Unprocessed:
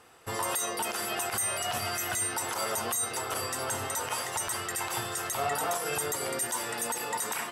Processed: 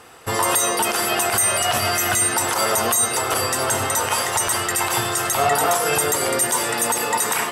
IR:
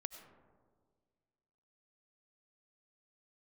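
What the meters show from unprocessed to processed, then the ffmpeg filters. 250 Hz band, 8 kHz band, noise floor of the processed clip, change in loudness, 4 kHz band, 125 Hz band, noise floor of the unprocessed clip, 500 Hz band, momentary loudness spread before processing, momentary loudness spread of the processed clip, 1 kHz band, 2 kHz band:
+12.0 dB, +11.5 dB, −25 dBFS, +11.5 dB, +11.5 dB, +11.5 dB, −37 dBFS, +12.0 dB, 3 LU, 3 LU, +12.0 dB, +11.5 dB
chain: -filter_complex "[0:a]acontrast=21,asplit=2[link_01][link_02];[1:a]atrim=start_sample=2205[link_03];[link_02][link_03]afir=irnorm=-1:irlink=0,volume=10.5dB[link_04];[link_01][link_04]amix=inputs=2:normalize=0,volume=-3.5dB"

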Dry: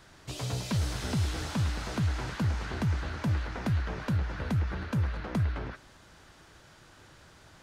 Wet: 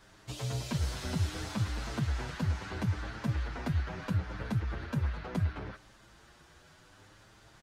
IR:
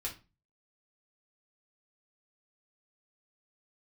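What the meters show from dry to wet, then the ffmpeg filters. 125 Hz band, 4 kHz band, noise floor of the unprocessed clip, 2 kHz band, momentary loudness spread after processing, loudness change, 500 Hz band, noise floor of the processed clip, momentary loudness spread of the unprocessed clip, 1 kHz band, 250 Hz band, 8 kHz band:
−3.0 dB, −3.0 dB, −56 dBFS, −3.0 dB, 3 LU, −3.0 dB, −3.0 dB, −59 dBFS, 4 LU, −3.0 dB, −3.0 dB, −3.0 dB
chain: -filter_complex "[0:a]asplit=2[link_01][link_02];[link_02]adelay=7.4,afreqshift=0.71[link_03];[link_01][link_03]amix=inputs=2:normalize=1"

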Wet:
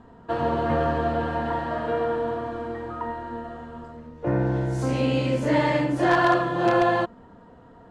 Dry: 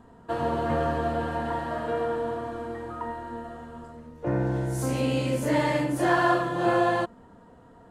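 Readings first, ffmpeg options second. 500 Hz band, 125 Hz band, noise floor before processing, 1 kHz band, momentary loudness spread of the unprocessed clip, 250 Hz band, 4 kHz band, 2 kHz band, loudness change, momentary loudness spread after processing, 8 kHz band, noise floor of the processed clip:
+2.5 dB, +3.0 dB, −52 dBFS, +2.5 dB, 14 LU, +2.5 dB, +2.5 dB, +2.5 dB, +2.5 dB, 13 LU, −5.5 dB, −50 dBFS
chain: -filter_complex "[0:a]asplit=2[link_01][link_02];[link_02]aeval=exprs='(mod(4.47*val(0)+1,2)-1)/4.47':channel_layout=same,volume=-8.5dB[link_03];[link_01][link_03]amix=inputs=2:normalize=0,lowpass=5100"

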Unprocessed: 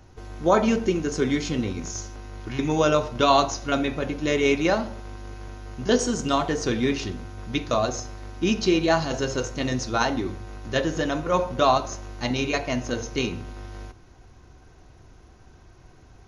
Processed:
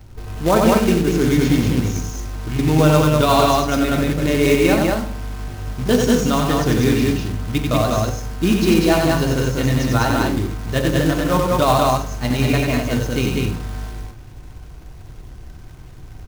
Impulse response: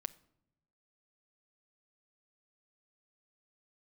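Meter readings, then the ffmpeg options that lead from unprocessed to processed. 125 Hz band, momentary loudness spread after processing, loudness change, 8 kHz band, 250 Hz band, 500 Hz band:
+13.0 dB, 12 LU, +7.0 dB, +5.0 dB, +8.5 dB, +5.5 dB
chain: -filter_complex "[0:a]bass=frequency=250:gain=6,treble=frequency=4000:gain=-4,acrusher=bits=3:mode=log:mix=0:aa=0.000001,aecho=1:1:90.38|195.3|242:0.631|0.794|0.282,asplit=2[link_01][link_02];[1:a]atrim=start_sample=2205,lowshelf=frequency=160:gain=4.5[link_03];[link_02][link_03]afir=irnorm=-1:irlink=0,volume=14dB[link_04];[link_01][link_04]amix=inputs=2:normalize=0,volume=-12.5dB"

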